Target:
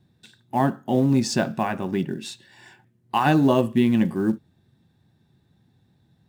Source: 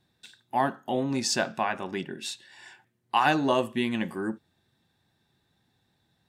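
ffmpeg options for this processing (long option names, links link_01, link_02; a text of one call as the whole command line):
ffmpeg -i in.wav -af "acrusher=bits=6:mode=log:mix=0:aa=0.000001,equalizer=frequency=130:width=0.34:gain=14.5,volume=-1.5dB" out.wav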